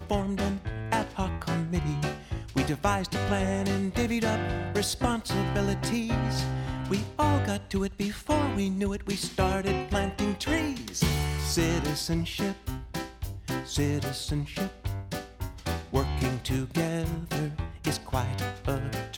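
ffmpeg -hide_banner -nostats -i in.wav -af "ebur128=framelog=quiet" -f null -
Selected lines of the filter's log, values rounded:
Integrated loudness:
  I:         -29.6 LUFS
  Threshold: -39.6 LUFS
Loudness range:
  LRA:         3.3 LU
  Threshold: -49.5 LUFS
  LRA low:   -31.5 LUFS
  LRA high:  -28.2 LUFS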